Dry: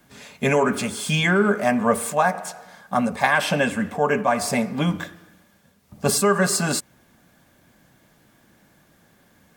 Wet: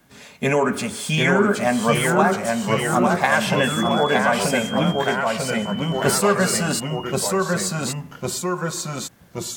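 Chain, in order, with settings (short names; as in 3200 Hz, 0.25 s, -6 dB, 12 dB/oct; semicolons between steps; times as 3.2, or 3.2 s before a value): 3.56–4.17 whine 3400 Hz -29 dBFS; echoes that change speed 0.723 s, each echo -1 st, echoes 3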